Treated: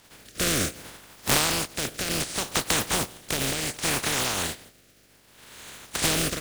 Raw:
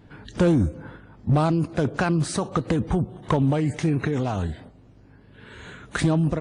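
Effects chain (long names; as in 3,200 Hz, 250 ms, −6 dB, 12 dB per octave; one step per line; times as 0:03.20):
compressing power law on the bin magnitudes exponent 0.19
rotating-speaker cabinet horn 0.65 Hz
level −1 dB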